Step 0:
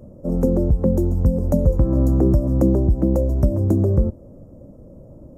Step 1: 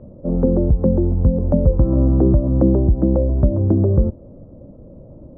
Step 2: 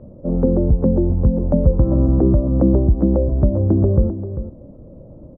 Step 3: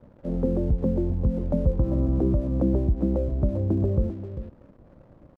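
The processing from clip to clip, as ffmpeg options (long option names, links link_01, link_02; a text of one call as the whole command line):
ffmpeg -i in.wav -af "lowpass=1300,volume=2dB" out.wav
ffmpeg -i in.wav -af "aecho=1:1:395:0.282" out.wav
ffmpeg -i in.wav -af "aeval=exprs='sgn(val(0))*max(abs(val(0))-0.00562,0)':channel_layout=same,volume=-8dB" out.wav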